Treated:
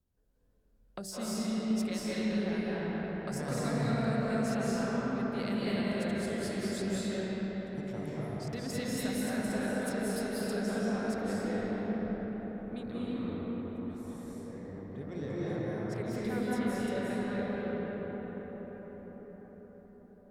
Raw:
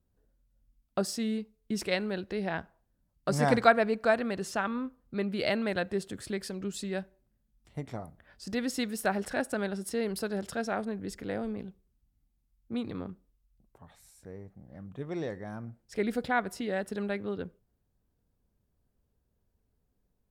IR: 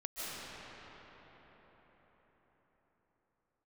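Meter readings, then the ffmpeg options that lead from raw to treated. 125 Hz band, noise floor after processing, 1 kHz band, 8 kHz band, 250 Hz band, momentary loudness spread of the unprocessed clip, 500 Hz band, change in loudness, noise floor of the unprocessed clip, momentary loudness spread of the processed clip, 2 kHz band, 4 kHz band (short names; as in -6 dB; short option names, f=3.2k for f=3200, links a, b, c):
+3.0 dB, -58 dBFS, -6.5 dB, -0.5 dB, +2.0 dB, 16 LU, -3.0 dB, -2.5 dB, -76 dBFS, 12 LU, -5.5 dB, -2.5 dB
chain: -filter_complex "[0:a]bandreject=f=48.42:t=h:w=4,bandreject=f=96.84:t=h:w=4,bandreject=f=145.26:t=h:w=4,bandreject=f=193.68:t=h:w=4,bandreject=f=242.1:t=h:w=4,bandreject=f=290.52:t=h:w=4,bandreject=f=338.94:t=h:w=4,bandreject=f=387.36:t=h:w=4,bandreject=f=435.78:t=h:w=4,bandreject=f=484.2:t=h:w=4,bandreject=f=532.62:t=h:w=4,bandreject=f=581.04:t=h:w=4,bandreject=f=629.46:t=h:w=4,bandreject=f=677.88:t=h:w=4,bandreject=f=726.3:t=h:w=4,bandreject=f=774.72:t=h:w=4,bandreject=f=823.14:t=h:w=4,acrossover=split=190|5800[a][b][c];[b]acompressor=threshold=-37dB:ratio=6[d];[a][d][c]amix=inputs=3:normalize=0[e];[1:a]atrim=start_sample=2205,asetrate=35280,aresample=44100[f];[e][f]afir=irnorm=-1:irlink=0"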